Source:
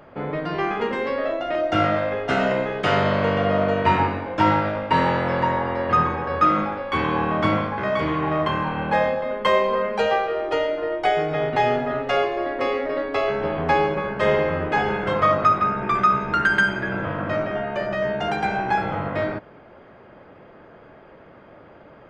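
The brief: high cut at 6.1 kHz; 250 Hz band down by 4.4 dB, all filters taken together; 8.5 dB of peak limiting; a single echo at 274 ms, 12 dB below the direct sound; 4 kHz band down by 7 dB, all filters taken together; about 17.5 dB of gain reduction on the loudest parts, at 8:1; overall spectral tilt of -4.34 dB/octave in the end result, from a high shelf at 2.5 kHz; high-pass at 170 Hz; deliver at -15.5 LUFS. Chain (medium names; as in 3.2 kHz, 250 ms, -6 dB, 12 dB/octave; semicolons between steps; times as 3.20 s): high-pass 170 Hz; low-pass 6.1 kHz; peaking EQ 250 Hz -4.5 dB; treble shelf 2.5 kHz -4 dB; peaking EQ 4 kHz -6.5 dB; compression 8:1, threshold -34 dBFS; peak limiter -30.5 dBFS; delay 274 ms -12 dB; trim +23.5 dB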